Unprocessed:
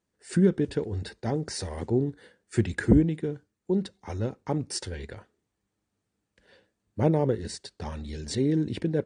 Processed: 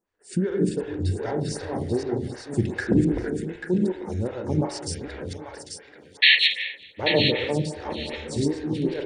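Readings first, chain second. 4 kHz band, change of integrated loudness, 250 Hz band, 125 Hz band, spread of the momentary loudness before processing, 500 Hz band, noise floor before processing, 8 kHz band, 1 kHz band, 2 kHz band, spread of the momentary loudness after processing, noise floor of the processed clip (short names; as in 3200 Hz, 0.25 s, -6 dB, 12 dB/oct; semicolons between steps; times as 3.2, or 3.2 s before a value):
+17.5 dB, +4.0 dB, +1.0 dB, +0.5 dB, 15 LU, +3.0 dB, -82 dBFS, +1.5 dB, +3.5 dB, +15.5 dB, 14 LU, -51 dBFS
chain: reverse delay 0.254 s, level -1 dB; in parallel at +1.5 dB: vocal rider within 3 dB 0.5 s; on the sum: painted sound noise, 6.22–6.48, 1700–4400 Hz -7 dBFS; on a send: thinning echo 0.84 s, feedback 23%, high-pass 840 Hz, level -5.5 dB; on the sum: spring tank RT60 1 s, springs 33/43 ms, chirp 80 ms, DRR 3.5 dB; photocell phaser 2.6 Hz; gain -6 dB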